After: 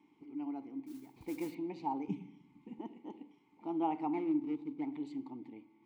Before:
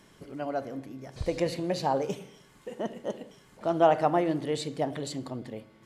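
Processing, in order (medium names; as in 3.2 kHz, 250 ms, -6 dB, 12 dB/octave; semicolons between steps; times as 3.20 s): 4.13–4.94 s: median filter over 41 samples; vowel filter u; 0.86–1.55 s: modulation noise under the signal 19 dB; 2.08–2.79 s: resonant low shelf 290 Hz +11.5 dB, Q 1.5; trim +1.5 dB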